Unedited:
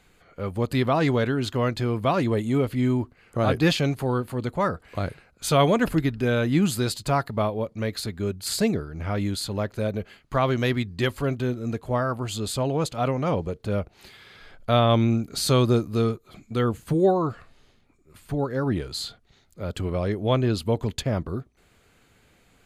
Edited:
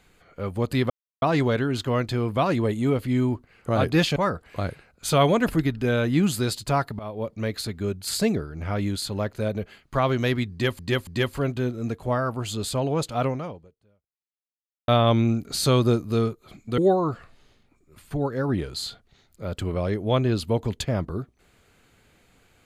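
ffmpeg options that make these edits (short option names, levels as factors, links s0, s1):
-filter_complex "[0:a]asplit=8[s0][s1][s2][s3][s4][s5][s6][s7];[s0]atrim=end=0.9,asetpts=PTS-STARTPTS,afade=t=out:st=0.896:d=0.004:c=hsin,apad=pad_dur=0.32[s8];[s1]atrim=start=0.9:end=3.842,asetpts=PTS-STARTPTS,afade=t=in:d=0.004:c=hsin[s9];[s2]atrim=start=4.548:end=7.38,asetpts=PTS-STARTPTS,afade=t=out:st=2.828:d=0.004:c=hsin:silence=0.105925[s10];[s3]atrim=start=7.38:end=11.182,asetpts=PTS-STARTPTS,afade=t=in:d=0.3:silence=0.105925[s11];[s4]atrim=start=10.898:end=11.182[s12];[s5]atrim=start=10.898:end=14.71,asetpts=PTS-STARTPTS,afade=t=out:st=2.242:d=1.57:c=exp[s13];[s6]atrim=start=14.71:end=16.612,asetpts=PTS-STARTPTS,afade=t=in:d=0.004:c=hsin[s14];[s7]atrim=start=16.958[s15];[s8][s9]concat=n=2:v=0:a=1[s16];[s10][s11]concat=n=2:v=0:a=1[s17];[s16][s17]acrossfade=d=0.004:c1=hsin:c2=hsin[s18];[s18][s12]acrossfade=d=0.004:c1=hsin:c2=hsin[s19];[s13][s14]concat=n=2:v=0:a=1[s20];[s19][s20]acrossfade=d=0.004:c1=hsin:c2=hsin[s21];[s21][s15]acrossfade=d=0.004:c1=hsin:c2=hsin"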